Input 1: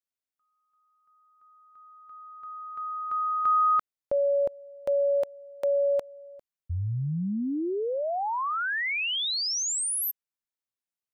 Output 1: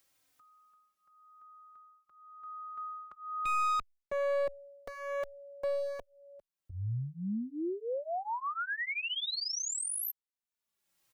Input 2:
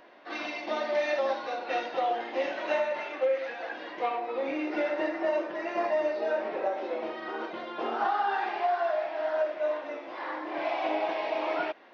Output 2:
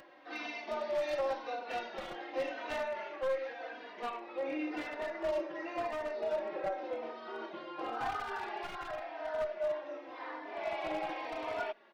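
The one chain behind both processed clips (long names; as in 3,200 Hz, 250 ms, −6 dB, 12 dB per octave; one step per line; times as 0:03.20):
wavefolder on the positive side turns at −24 dBFS
upward compression, threshold −45 dBFS
barber-pole flanger 3.2 ms −0.91 Hz
level −4 dB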